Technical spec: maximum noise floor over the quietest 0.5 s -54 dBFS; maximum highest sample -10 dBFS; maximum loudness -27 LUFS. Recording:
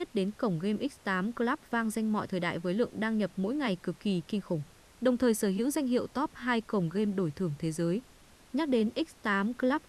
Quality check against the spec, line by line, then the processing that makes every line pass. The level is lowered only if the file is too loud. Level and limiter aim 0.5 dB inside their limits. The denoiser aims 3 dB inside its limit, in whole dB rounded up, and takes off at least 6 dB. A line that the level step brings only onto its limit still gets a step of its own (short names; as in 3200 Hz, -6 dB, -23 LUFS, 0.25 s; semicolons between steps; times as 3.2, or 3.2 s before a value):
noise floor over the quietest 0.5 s -57 dBFS: OK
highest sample -15.5 dBFS: OK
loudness -31.5 LUFS: OK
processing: none